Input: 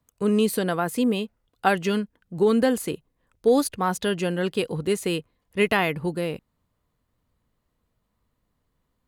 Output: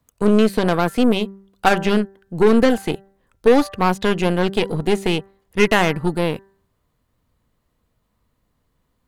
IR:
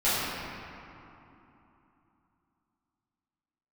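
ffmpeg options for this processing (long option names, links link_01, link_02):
-filter_complex "[0:a]acrossover=split=4200[link_01][link_02];[link_02]acompressor=threshold=-44dB:ratio=4:attack=1:release=60[link_03];[link_01][link_03]amix=inputs=2:normalize=0,aeval=exprs='0.422*(cos(1*acos(clip(val(0)/0.422,-1,1)))-cos(1*PI/2))+0.0422*(cos(8*acos(clip(val(0)/0.422,-1,1)))-cos(8*PI/2))':channel_layout=same,bandreject=frequency=195.3:width_type=h:width=4,bandreject=frequency=390.6:width_type=h:width=4,bandreject=frequency=585.9:width_type=h:width=4,bandreject=frequency=781.2:width_type=h:width=4,bandreject=frequency=976.5:width_type=h:width=4,bandreject=frequency=1171.8:width_type=h:width=4,bandreject=frequency=1367.1:width_type=h:width=4,bandreject=frequency=1562.4:width_type=h:width=4,bandreject=frequency=1757.7:width_type=h:width=4,bandreject=frequency=1953:width_type=h:width=4,volume=5.5dB"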